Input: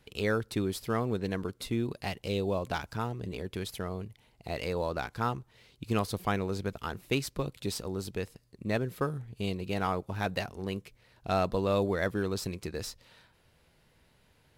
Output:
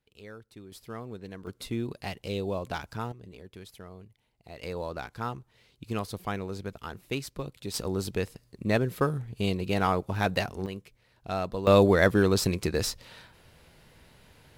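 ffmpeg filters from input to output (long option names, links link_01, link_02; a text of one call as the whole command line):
ffmpeg -i in.wav -af "asetnsamples=nb_out_samples=441:pad=0,asendcmd='0.72 volume volume -9.5dB;1.47 volume volume -1dB;3.12 volume volume -10dB;4.63 volume volume -3dB;7.74 volume volume 5dB;10.66 volume volume -3dB;11.67 volume volume 9dB',volume=-17dB" out.wav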